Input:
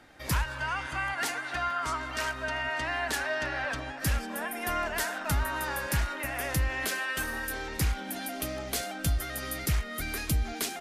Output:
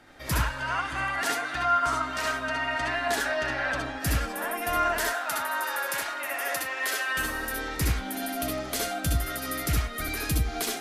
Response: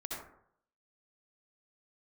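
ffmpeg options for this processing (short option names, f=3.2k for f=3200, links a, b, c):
-filter_complex "[0:a]asettb=1/sr,asplit=3[a][b][c];[a]atrim=end=5.054[d];[b]atrim=start=5.05:end=7.08,asetpts=PTS-STARTPTS,afade=t=in:d=0.004:c=qsin,afade=t=out:st=2.026:d=0.004:c=qsin,highpass=530[e];[c]atrim=start=7.076[f];[d][e]acrossfade=d=0.004:c1=hsin:c2=qsin[g];[g][f]acrossfade=d=0.004:c1=qsin:c2=hsin[h];[1:a]atrim=start_sample=2205,atrim=end_sample=3528[i];[h][i]afir=irnorm=-1:irlink=0,volume=5.5dB"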